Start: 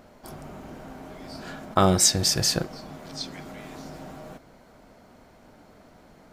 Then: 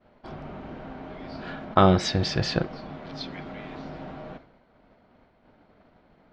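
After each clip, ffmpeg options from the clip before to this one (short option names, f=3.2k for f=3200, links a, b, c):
-af "lowpass=f=3.8k:w=0.5412,lowpass=f=3.8k:w=1.3066,agate=range=-33dB:threshold=-45dB:ratio=3:detection=peak,volume=2dB"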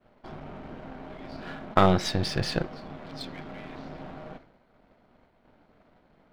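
-af "aeval=exprs='if(lt(val(0),0),0.447*val(0),val(0))':c=same"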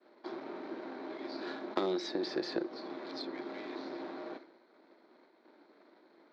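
-filter_complex "[0:a]highpass=f=300:w=0.5412,highpass=f=300:w=1.3066,equalizer=f=340:t=q:w=4:g=9,equalizer=f=490:t=q:w=4:g=-3,equalizer=f=710:t=q:w=4:g=-6,equalizer=f=1.3k:t=q:w=4:g=-3,equalizer=f=2.9k:t=q:w=4:g=-9,equalizer=f=4.1k:t=q:w=4:g=7,lowpass=f=5.9k:w=0.5412,lowpass=f=5.9k:w=1.3066,acrossover=split=490|1300|2600[a][b][c][d];[a]acompressor=threshold=-35dB:ratio=4[e];[b]acompressor=threshold=-43dB:ratio=4[f];[c]acompressor=threshold=-56dB:ratio=4[g];[d]acompressor=threshold=-48dB:ratio=4[h];[e][f][g][h]amix=inputs=4:normalize=0,volume=1.5dB"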